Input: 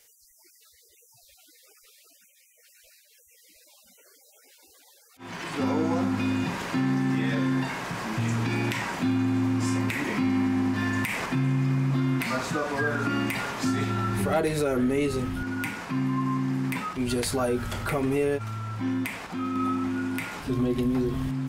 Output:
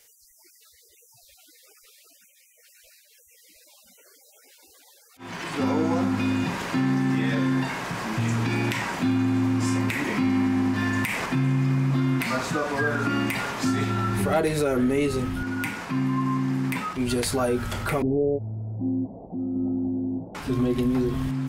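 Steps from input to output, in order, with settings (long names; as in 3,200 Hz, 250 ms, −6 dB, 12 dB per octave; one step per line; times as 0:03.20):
0:18.02–0:20.35: Butterworth low-pass 730 Hz 48 dB per octave
level +2 dB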